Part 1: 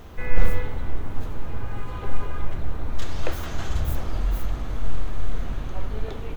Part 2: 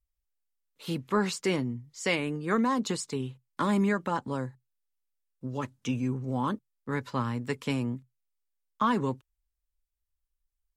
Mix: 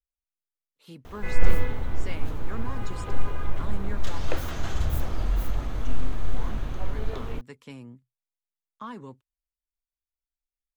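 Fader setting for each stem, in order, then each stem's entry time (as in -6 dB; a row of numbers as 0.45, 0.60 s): -1.0, -13.0 dB; 1.05, 0.00 s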